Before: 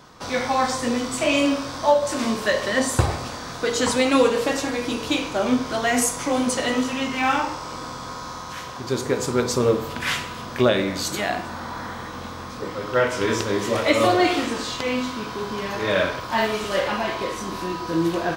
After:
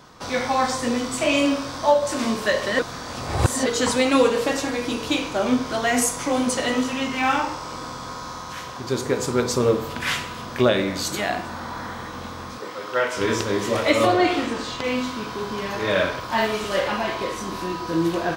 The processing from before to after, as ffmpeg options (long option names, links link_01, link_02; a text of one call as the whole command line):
ffmpeg -i in.wav -filter_complex "[0:a]asettb=1/sr,asplit=3[link_01][link_02][link_03];[link_01]atrim=end=12.584[link_04];[link_02]atrim=start=12.58:end=13.17,asetpts=PTS-STARTPTS,afade=type=in:duration=0.004:curve=qsin,afade=type=out:start_time=0.586:duration=0.004:curve=qsin,highpass=frequency=550:poles=1[link_05];[link_03]atrim=start=13.166[link_06];[link_04][link_05]acrossfade=duration=0.004:curve1=hsin:curve2=qsin[link_07];[link_07][link_06]acrossfade=duration=0.004:curve1=qsin:curve2=hsin,asettb=1/sr,asplit=3[link_08][link_09][link_10];[link_08]atrim=end=14.054[link_11];[link_09]atrim=start=14.05:end=14.84,asetpts=PTS-STARTPTS,afade=type=in:duration=0.004:curve=qsin,afade=type=out:start_time=0.786:duration=0.004:curve=qsin,highshelf=frequency=5200:gain=-7.5[link_12];[link_10]atrim=start=14.836[link_13];[link_11][link_12]acrossfade=duration=0.004:curve1=hsin:curve2=qsin[link_14];[link_14][link_13]acrossfade=duration=0.004:curve1=qsin:curve2=hsin,asplit=3[link_15][link_16][link_17];[link_15]atrim=end=2.792[link_18];[link_16]atrim=start=2.788:end=3.662,asetpts=PTS-STARTPTS,areverse[link_19];[link_17]atrim=start=3.658[link_20];[link_18][link_19]acrossfade=duration=0.004:curve1=hsin:curve2=hsin[link_21];[link_21][link_20]acrossfade=duration=0.004:curve1=hsin:curve2=hsin" out.wav